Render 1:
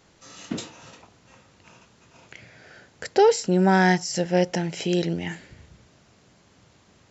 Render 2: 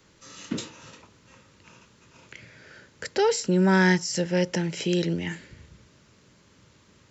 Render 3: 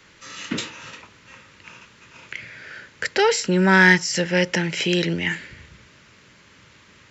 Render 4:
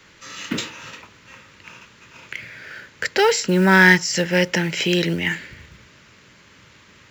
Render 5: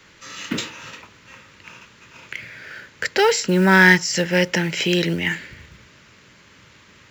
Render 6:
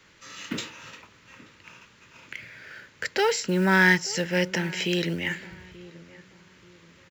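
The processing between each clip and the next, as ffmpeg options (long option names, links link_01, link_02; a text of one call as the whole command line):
ffmpeg -i in.wav -filter_complex "[0:a]equalizer=frequency=730:width_type=o:width=0.23:gain=-15,acrossover=split=230|650|2600[link_01][link_02][link_03][link_04];[link_02]alimiter=limit=-21.5dB:level=0:latency=1[link_05];[link_01][link_05][link_03][link_04]amix=inputs=4:normalize=0" out.wav
ffmpeg -i in.wav -filter_complex "[0:a]equalizer=frequency=2100:width=0.7:gain=10.5,asplit=2[link_01][link_02];[link_02]asoftclip=type=tanh:threshold=-16dB,volume=-10dB[link_03];[link_01][link_03]amix=inputs=2:normalize=0" out.wav
ffmpeg -i in.wav -af "acrusher=bits=7:mode=log:mix=0:aa=0.000001,volume=1.5dB" out.wav
ffmpeg -i in.wav -af anull out.wav
ffmpeg -i in.wav -filter_complex "[0:a]asplit=2[link_01][link_02];[link_02]adelay=882,lowpass=frequency=1400:poles=1,volume=-19dB,asplit=2[link_03][link_04];[link_04]adelay=882,lowpass=frequency=1400:poles=1,volume=0.35,asplit=2[link_05][link_06];[link_06]adelay=882,lowpass=frequency=1400:poles=1,volume=0.35[link_07];[link_01][link_03][link_05][link_07]amix=inputs=4:normalize=0,volume=-6.5dB" out.wav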